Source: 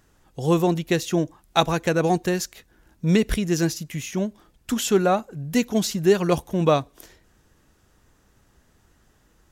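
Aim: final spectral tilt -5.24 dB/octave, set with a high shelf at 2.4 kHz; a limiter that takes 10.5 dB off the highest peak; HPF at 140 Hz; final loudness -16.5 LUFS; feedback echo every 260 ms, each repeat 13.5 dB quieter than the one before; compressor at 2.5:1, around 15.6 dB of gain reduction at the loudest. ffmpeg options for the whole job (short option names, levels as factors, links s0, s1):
-af "highpass=140,highshelf=f=2400:g=-5,acompressor=threshold=0.0126:ratio=2.5,alimiter=level_in=1.68:limit=0.0631:level=0:latency=1,volume=0.596,aecho=1:1:260|520:0.211|0.0444,volume=14.1"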